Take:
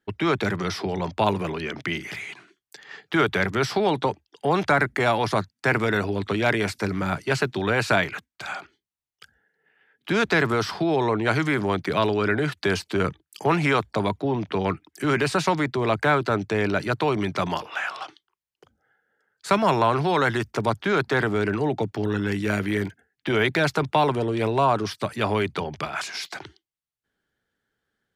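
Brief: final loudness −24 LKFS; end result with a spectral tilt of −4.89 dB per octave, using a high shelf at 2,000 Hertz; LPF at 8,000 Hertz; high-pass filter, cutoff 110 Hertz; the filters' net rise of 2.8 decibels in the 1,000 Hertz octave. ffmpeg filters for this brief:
ffmpeg -i in.wav -af "highpass=110,lowpass=8000,equalizer=frequency=1000:width_type=o:gain=5.5,highshelf=frequency=2000:gain=-8,volume=-0.5dB" out.wav

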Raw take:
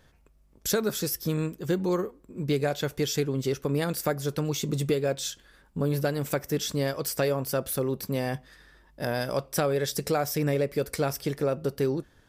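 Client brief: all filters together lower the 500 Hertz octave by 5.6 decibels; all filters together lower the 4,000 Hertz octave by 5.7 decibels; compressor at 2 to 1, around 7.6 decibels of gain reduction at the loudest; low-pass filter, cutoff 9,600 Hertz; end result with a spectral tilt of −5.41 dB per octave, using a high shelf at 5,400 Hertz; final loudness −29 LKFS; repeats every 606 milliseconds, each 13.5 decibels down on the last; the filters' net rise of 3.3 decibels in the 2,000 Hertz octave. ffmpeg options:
ffmpeg -i in.wav -af "lowpass=9600,equalizer=frequency=500:width_type=o:gain=-7,equalizer=frequency=2000:width_type=o:gain=7,equalizer=frequency=4000:width_type=o:gain=-5.5,highshelf=frequency=5400:gain=-8,acompressor=threshold=-38dB:ratio=2,aecho=1:1:606|1212:0.211|0.0444,volume=9dB" out.wav

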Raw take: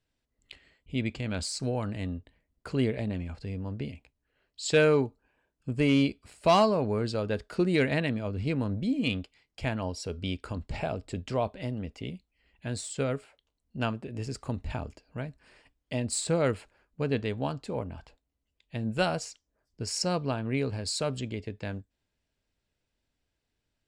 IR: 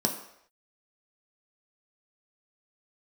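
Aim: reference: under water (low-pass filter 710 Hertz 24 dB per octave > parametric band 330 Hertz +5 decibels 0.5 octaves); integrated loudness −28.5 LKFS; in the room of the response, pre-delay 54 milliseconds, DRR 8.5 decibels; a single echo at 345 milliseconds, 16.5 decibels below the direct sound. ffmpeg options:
-filter_complex "[0:a]aecho=1:1:345:0.15,asplit=2[link_01][link_02];[1:a]atrim=start_sample=2205,adelay=54[link_03];[link_02][link_03]afir=irnorm=-1:irlink=0,volume=-17dB[link_04];[link_01][link_04]amix=inputs=2:normalize=0,lowpass=frequency=710:width=0.5412,lowpass=frequency=710:width=1.3066,equalizer=frequency=330:width_type=o:width=0.5:gain=5,volume=-0.5dB"

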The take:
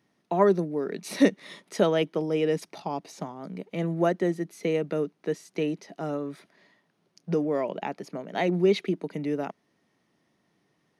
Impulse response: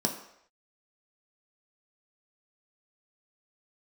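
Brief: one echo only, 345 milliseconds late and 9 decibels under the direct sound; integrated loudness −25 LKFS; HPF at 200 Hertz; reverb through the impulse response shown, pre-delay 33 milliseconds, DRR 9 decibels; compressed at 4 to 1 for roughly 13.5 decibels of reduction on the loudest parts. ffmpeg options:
-filter_complex "[0:a]highpass=200,acompressor=threshold=-32dB:ratio=4,aecho=1:1:345:0.355,asplit=2[link_01][link_02];[1:a]atrim=start_sample=2205,adelay=33[link_03];[link_02][link_03]afir=irnorm=-1:irlink=0,volume=-16dB[link_04];[link_01][link_04]amix=inputs=2:normalize=0,volume=10dB"

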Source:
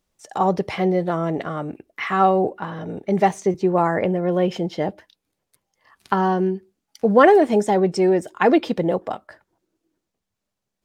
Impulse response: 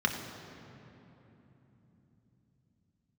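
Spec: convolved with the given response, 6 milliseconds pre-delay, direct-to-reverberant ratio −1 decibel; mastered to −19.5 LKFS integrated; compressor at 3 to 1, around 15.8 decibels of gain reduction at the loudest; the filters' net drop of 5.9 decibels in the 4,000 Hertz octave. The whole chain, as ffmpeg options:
-filter_complex "[0:a]equalizer=frequency=4000:width_type=o:gain=-9,acompressor=threshold=-31dB:ratio=3,asplit=2[link_01][link_02];[1:a]atrim=start_sample=2205,adelay=6[link_03];[link_02][link_03]afir=irnorm=-1:irlink=0,volume=-9dB[link_04];[link_01][link_04]amix=inputs=2:normalize=0,volume=9.5dB"

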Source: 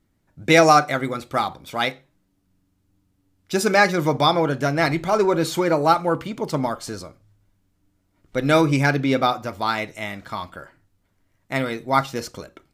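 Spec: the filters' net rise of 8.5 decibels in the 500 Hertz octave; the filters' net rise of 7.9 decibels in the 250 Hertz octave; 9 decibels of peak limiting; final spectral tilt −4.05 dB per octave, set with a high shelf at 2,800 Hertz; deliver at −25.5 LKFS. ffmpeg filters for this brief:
ffmpeg -i in.wav -af "equalizer=frequency=250:width_type=o:gain=7,equalizer=frequency=500:width_type=o:gain=9,highshelf=frequency=2800:gain=-4,volume=-8.5dB,alimiter=limit=-13.5dB:level=0:latency=1" out.wav

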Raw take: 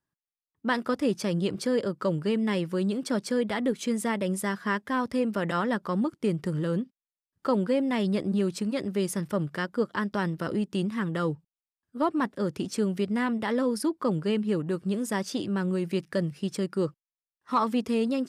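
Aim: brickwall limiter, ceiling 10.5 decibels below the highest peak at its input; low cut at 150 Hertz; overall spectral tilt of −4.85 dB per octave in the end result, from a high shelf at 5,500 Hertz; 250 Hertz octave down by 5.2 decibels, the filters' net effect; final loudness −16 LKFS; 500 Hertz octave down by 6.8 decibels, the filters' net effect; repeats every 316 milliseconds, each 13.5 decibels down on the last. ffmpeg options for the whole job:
ffmpeg -i in.wav -af "highpass=150,equalizer=frequency=250:width_type=o:gain=-4,equalizer=frequency=500:width_type=o:gain=-7,highshelf=frequency=5500:gain=3.5,alimiter=level_in=1.5dB:limit=-24dB:level=0:latency=1,volume=-1.5dB,aecho=1:1:316|632:0.211|0.0444,volume=19dB" out.wav

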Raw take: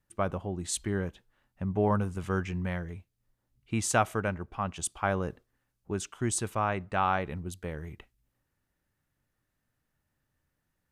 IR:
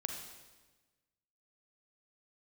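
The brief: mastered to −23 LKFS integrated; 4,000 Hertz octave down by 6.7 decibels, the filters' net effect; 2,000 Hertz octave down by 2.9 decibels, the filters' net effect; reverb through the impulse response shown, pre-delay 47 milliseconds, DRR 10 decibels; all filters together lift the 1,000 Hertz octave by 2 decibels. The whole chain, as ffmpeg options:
-filter_complex "[0:a]equalizer=frequency=1000:width_type=o:gain=4.5,equalizer=frequency=2000:width_type=o:gain=-5.5,equalizer=frequency=4000:width_type=o:gain=-7.5,asplit=2[link_01][link_02];[1:a]atrim=start_sample=2205,adelay=47[link_03];[link_02][link_03]afir=irnorm=-1:irlink=0,volume=-10.5dB[link_04];[link_01][link_04]amix=inputs=2:normalize=0,volume=8dB"

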